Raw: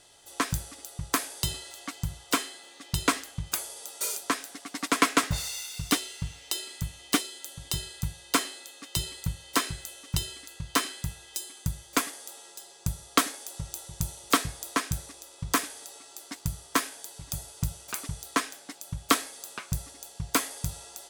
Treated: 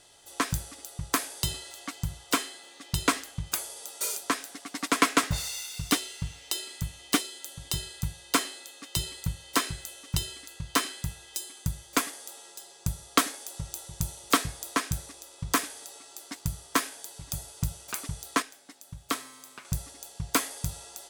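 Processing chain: 18.42–19.65 resonator 130 Hz, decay 1.9 s, mix 60%

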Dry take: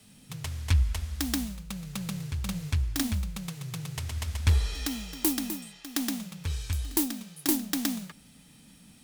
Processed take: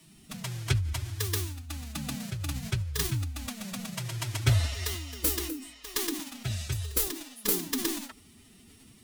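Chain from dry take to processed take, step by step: formant-preserving pitch shift +7 st

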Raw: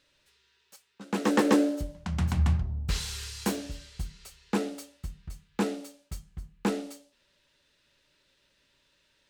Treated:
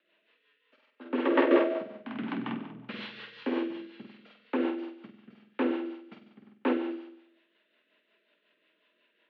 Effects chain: mistuned SSB +53 Hz 180–3100 Hz; flutter echo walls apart 8.2 m, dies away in 0.78 s; rotary speaker horn 5.5 Hz; gain +1 dB

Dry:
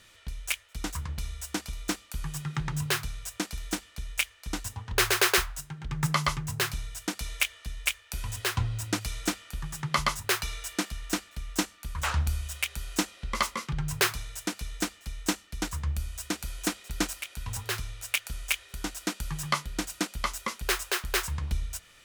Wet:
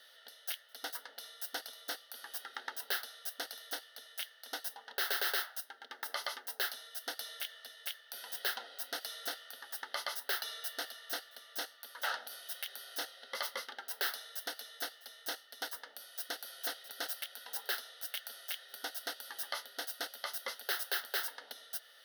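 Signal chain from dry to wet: high shelf 11000 Hz +5.5 dB; limiter -20 dBFS, peak gain reduction 11.5 dB; brick-wall FIR high-pass 250 Hz; fixed phaser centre 1600 Hz, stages 8

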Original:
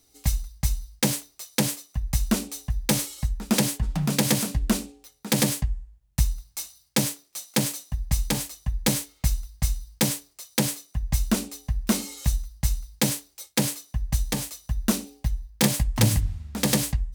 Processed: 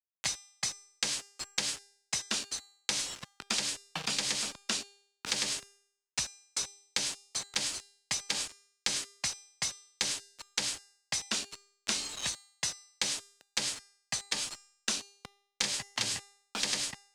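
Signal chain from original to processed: 11.38–13.52 block floating point 5-bit; weighting filter ITU-R 468; spectral noise reduction 20 dB; compressor 2:1, threshold -23 dBFS, peak gain reduction 7.5 dB; soft clip -16 dBFS, distortion -12 dB; bit-crush 6-bit; air absorption 78 m; resonator 400 Hz, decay 0.52 s, mix 60%; three-band squash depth 70%; gain +6 dB

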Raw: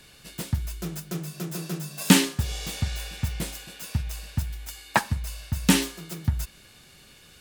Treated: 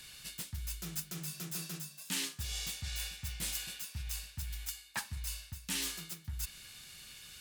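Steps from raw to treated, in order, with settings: reverse; compressor 6:1, threshold -34 dBFS, peak gain reduction 22.5 dB; reverse; passive tone stack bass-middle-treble 5-5-5; gain +9 dB

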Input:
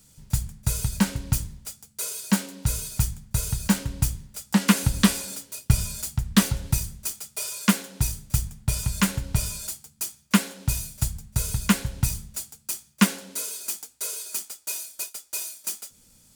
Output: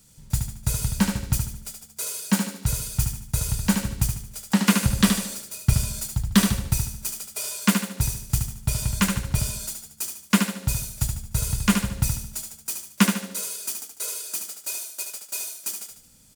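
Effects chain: tempo 1×; feedback echo 74 ms, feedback 41%, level -6 dB

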